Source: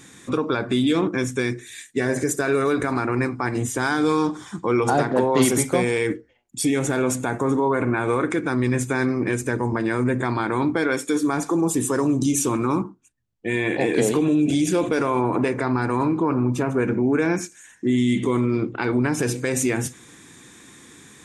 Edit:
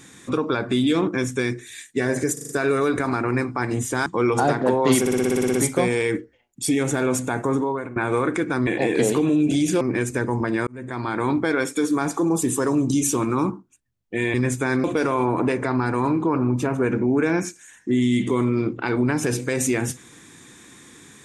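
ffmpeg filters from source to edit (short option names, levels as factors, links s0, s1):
-filter_complex "[0:a]asplit=21[s0][s1][s2][s3][s4][s5][s6][s7][s8][s9][s10][s11][s12][s13][s14][s15][s16][s17][s18][s19][s20];[s0]atrim=end=2.372[s21];[s1]atrim=start=2.328:end=2.372[s22];[s2]atrim=start=2.328:end=2.372[s23];[s3]atrim=start=2.328:end=2.372[s24];[s4]atrim=start=2.328:end=3.902[s25];[s5]atrim=start=4.558:end=5.562[s26];[s6]atrim=start=5.498:end=5.562[s27];[s7]atrim=start=5.498:end=5.562[s28];[s8]atrim=start=5.498:end=5.562[s29];[s9]atrim=start=5.498:end=5.562[s30];[s10]atrim=start=5.498:end=5.562[s31];[s11]atrim=start=5.498:end=5.562[s32];[s12]atrim=start=5.498:end=5.562[s33];[s13]atrim=start=5.498:end=5.562[s34];[s14]atrim=start=5.498:end=7.92,asetpts=PTS-STARTPTS,afade=t=out:st=1.972:d=0.45:silence=0.11885[s35];[s15]atrim=start=7.92:end=8.632,asetpts=PTS-STARTPTS,afade=t=in:d=0.004:c=hsin:silence=0.11885[s36];[s16]atrim=start=13.658:end=14.802[s37];[s17]atrim=start=9.128:end=9.99,asetpts=PTS-STARTPTS,afade=t=out:st=0.858:d=0.004:c=hsin[s38];[s18]atrim=start=9.99:end=13.662,asetpts=PTS-STARTPTS,afade=t=in:d=0.55[s39];[s19]atrim=start=8.628:end=9.132[s40];[s20]atrim=start=14.798[s41];[s21][s22]acrossfade=d=0.004:c1=hsin:c2=hsin[s42];[s42][s23]acrossfade=d=0.004:c1=hsin:c2=hsin[s43];[s43][s24]acrossfade=d=0.004:c1=hsin:c2=hsin[s44];[s44][s25]acrossfade=d=0.004:c1=hsin:c2=hsin[s45];[s45][s26]acrossfade=d=0.004:c1=hsin:c2=hsin[s46];[s46][s27]acrossfade=d=0.004:c1=hsin:c2=hsin[s47];[s47][s28]acrossfade=d=0.004:c1=hsin:c2=hsin[s48];[s48][s29]acrossfade=d=0.004:c1=hsin:c2=hsin[s49];[s49][s30]acrossfade=d=0.004:c1=hsin:c2=hsin[s50];[s50][s31]acrossfade=d=0.004:c1=hsin:c2=hsin[s51];[s51][s32]acrossfade=d=0.004:c1=hsin:c2=hsin[s52];[s52][s33]acrossfade=d=0.004:c1=hsin:c2=hsin[s53];[s53][s34]acrossfade=d=0.004:c1=hsin:c2=hsin[s54];[s35][s36]concat=n=2:v=0:a=1[s55];[s54][s55]acrossfade=d=0.004:c1=hsin:c2=hsin[s56];[s56][s37]acrossfade=d=0.004:c1=hsin:c2=hsin[s57];[s38][s39]concat=n=2:v=0:a=1[s58];[s57][s58]acrossfade=d=0.004:c1=hsin:c2=hsin[s59];[s59][s40]acrossfade=d=0.004:c1=hsin:c2=hsin[s60];[s60][s41]acrossfade=d=0.004:c1=hsin:c2=hsin"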